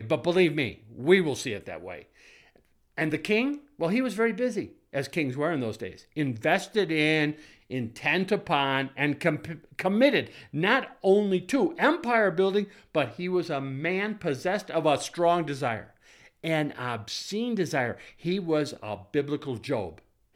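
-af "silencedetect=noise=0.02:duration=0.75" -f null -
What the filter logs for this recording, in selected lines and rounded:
silence_start: 1.99
silence_end: 2.98 | silence_duration: 0.99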